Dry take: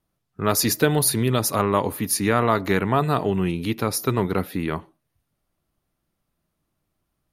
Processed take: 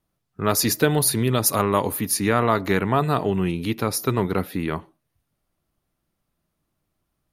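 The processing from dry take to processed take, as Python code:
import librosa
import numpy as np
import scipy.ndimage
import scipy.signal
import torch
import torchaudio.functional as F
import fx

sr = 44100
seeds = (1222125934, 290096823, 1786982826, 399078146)

y = fx.high_shelf(x, sr, hz=6400.0, db=8.0, at=(1.46, 2.01))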